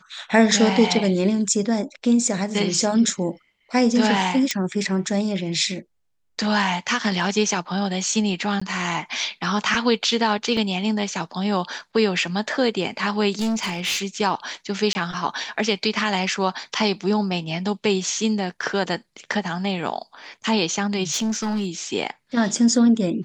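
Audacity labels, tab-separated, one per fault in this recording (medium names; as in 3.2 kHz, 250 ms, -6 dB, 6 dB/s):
4.510000	4.510000	pop -8 dBFS
8.600000	8.620000	dropout 15 ms
10.570000	10.570000	dropout 2.2 ms
13.390000	14.020000	clipped -20 dBFS
14.930000	14.950000	dropout 20 ms
21.110000	21.670000	clipped -19.5 dBFS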